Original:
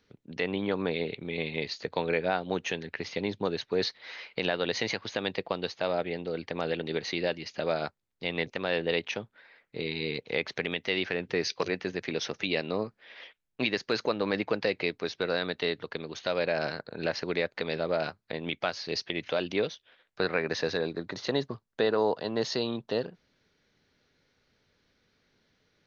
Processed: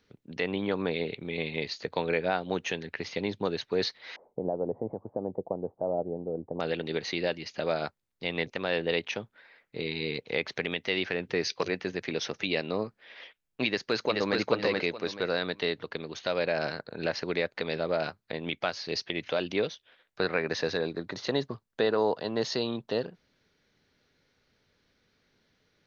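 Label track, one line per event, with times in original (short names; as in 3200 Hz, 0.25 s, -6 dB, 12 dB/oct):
4.160000	6.600000	steep low-pass 830 Hz
13.660000	14.360000	echo throw 0.43 s, feedback 25%, level -2 dB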